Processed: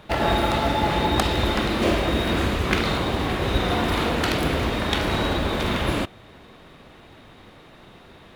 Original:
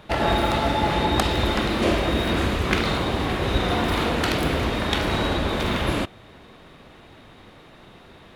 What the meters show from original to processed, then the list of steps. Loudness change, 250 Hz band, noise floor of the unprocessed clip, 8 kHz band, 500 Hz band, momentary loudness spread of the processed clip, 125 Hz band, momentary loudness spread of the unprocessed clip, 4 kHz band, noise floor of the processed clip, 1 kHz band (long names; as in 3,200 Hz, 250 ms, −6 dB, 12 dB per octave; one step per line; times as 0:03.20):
0.0 dB, 0.0 dB, −48 dBFS, 0.0 dB, 0.0 dB, 3 LU, 0.0 dB, 3 LU, 0.0 dB, −48 dBFS, 0.0 dB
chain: floating-point word with a short mantissa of 4 bits